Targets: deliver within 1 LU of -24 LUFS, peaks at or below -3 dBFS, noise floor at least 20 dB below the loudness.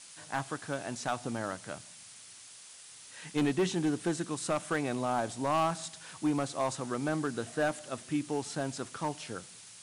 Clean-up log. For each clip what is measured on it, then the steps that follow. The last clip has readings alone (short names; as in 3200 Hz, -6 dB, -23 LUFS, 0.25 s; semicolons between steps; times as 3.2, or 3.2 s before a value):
clipped 1.0%; flat tops at -23.0 dBFS; noise floor -52 dBFS; noise floor target -54 dBFS; loudness -33.5 LUFS; peak -23.0 dBFS; loudness target -24.0 LUFS
-> clip repair -23 dBFS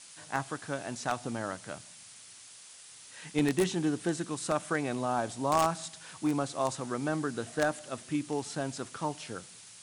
clipped 0.0%; noise floor -52 dBFS; noise floor target -53 dBFS
-> denoiser 6 dB, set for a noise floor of -52 dBFS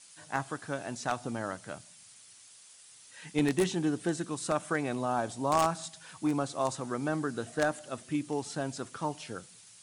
noise floor -55 dBFS; loudness -33.0 LUFS; peak -14.0 dBFS; loudness target -24.0 LUFS
-> gain +9 dB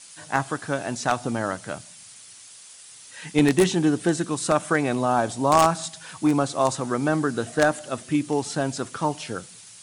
loudness -24.0 LUFS; peak -5.0 dBFS; noise floor -46 dBFS